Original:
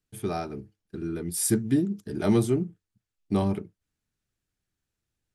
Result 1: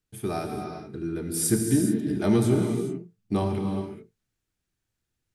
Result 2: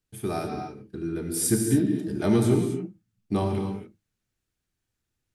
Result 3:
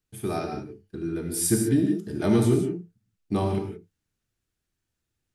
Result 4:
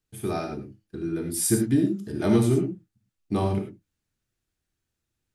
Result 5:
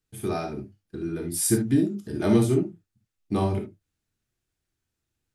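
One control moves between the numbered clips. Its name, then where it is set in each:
gated-style reverb, gate: 450 ms, 300 ms, 200 ms, 130 ms, 90 ms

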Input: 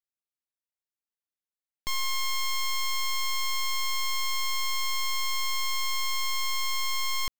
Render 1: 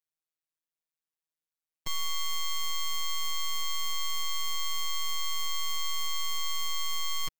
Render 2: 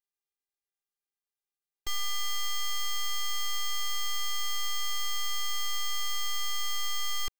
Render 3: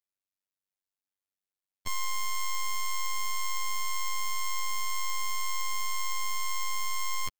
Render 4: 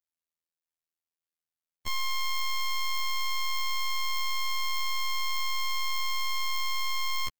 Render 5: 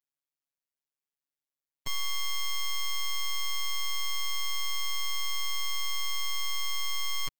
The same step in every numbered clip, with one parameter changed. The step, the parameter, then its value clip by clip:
robot voice, frequency: 160 Hz, 400 Hz, 96 Hz, 82 Hz, 140 Hz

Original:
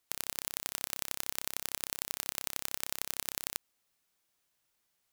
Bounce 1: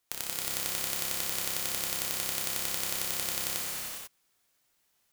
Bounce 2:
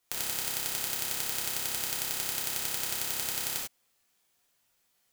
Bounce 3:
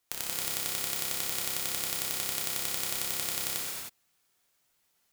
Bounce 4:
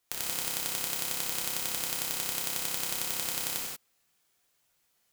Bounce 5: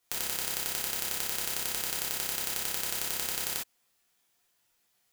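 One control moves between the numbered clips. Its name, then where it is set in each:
gated-style reverb, gate: 520 ms, 120 ms, 340 ms, 210 ms, 80 ms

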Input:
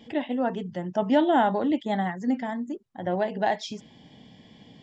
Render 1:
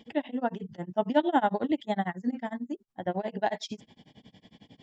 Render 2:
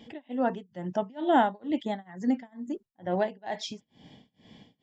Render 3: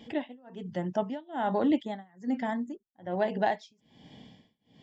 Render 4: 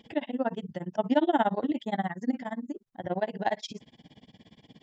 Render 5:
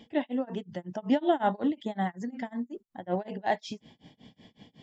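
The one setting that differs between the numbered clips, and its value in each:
tremolo, rate: 11 Hz, 2.2 Hz, 1.2 Hz, 17 Hz, 5.4 Hz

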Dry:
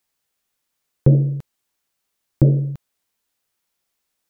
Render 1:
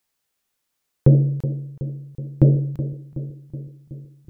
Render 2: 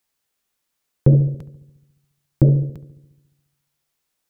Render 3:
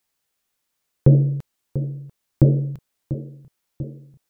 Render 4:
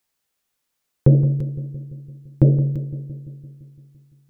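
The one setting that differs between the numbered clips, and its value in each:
filtered feedback delay, time: 373 ms, 70 ms, 692 ms, 170 ms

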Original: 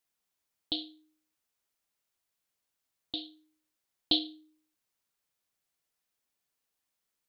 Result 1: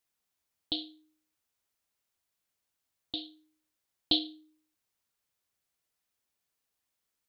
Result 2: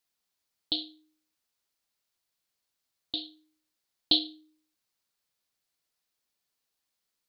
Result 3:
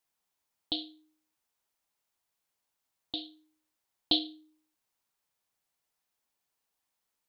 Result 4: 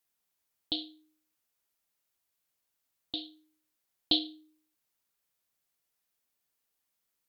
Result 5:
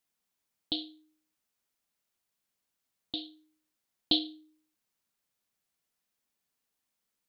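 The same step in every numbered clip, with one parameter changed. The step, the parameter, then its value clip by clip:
peaking EQ, frequency: 84 Hz, 4.4 kHz, 880 Hz, 15 kHz, 210 Hz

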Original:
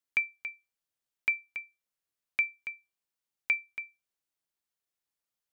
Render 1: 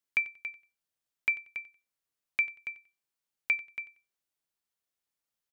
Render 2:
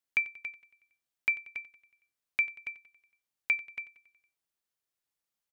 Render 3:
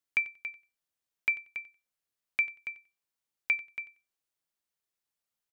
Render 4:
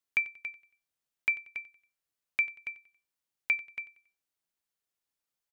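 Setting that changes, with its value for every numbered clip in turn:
feedback delay, feedback: 23%, 59%, 16%, 37%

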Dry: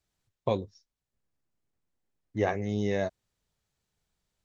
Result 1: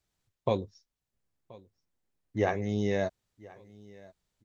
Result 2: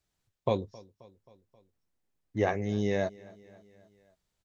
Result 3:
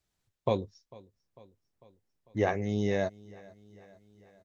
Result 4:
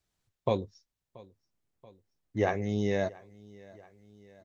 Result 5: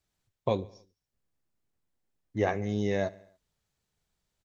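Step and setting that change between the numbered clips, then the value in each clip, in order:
feedback delay, time: 1029 ms, 266 ms, 448 ms, 681 ms, 71 ms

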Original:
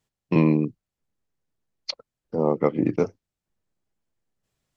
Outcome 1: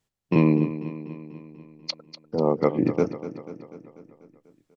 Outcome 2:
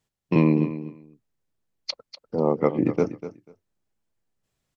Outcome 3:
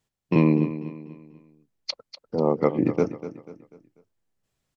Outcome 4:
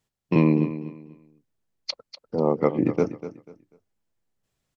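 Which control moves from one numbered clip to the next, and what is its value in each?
feedback delay, feedback: 60%, 16%, 40%, 26%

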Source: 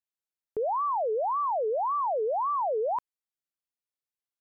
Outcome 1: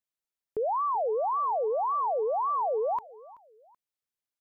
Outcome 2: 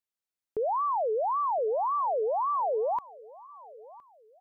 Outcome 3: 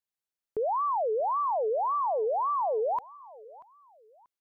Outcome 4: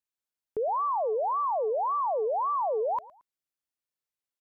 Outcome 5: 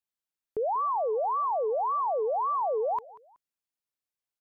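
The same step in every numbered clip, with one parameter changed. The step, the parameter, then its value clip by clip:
feedback delay, time: 380 ms, 1014 ms, 636 ms, 112 ms, 187 ms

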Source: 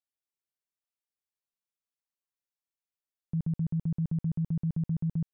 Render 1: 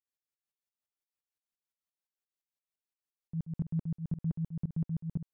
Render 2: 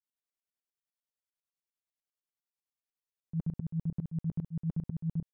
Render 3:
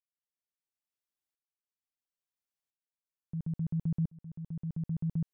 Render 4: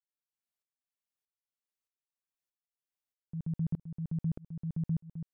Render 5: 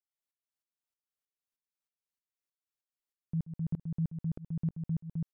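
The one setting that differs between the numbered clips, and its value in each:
tremolo, rate: 5.8 Hz, 10 Hz, 0.74 Hz, 1.6 Hz, 3.2 Hz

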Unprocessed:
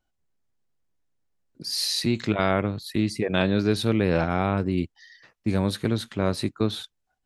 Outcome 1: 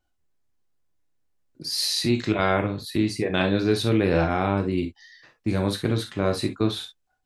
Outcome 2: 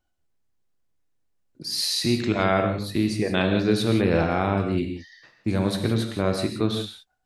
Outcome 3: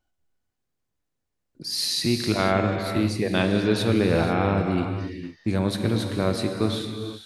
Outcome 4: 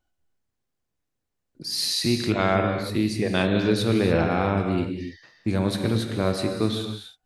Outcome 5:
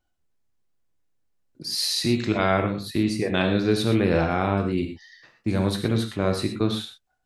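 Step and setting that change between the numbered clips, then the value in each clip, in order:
gated-style reverb, gate: 80 ms, 200 ms, 520 ms, 320 ms, 140 ms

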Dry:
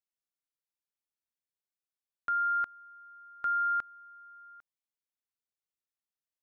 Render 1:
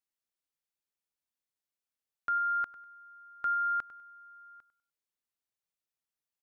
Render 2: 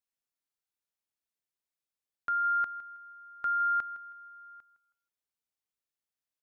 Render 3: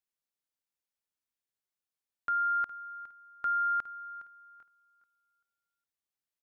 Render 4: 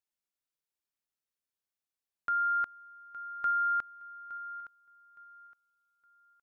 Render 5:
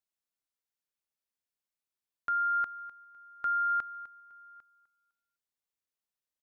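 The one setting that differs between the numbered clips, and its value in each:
feedback delay, time: 99 ms, 160 ms, 412 ms, 865 ms, 253 ms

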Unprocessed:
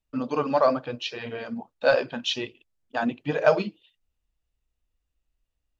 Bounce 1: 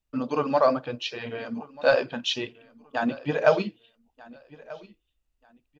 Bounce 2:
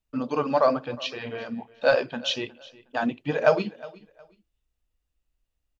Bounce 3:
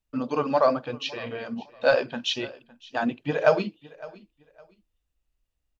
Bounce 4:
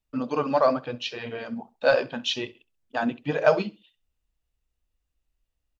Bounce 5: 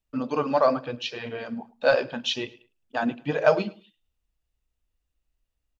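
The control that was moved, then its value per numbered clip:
feedback delay, time: 1238 ms, 363 ms, 560 ms, 66 ms, 106 ms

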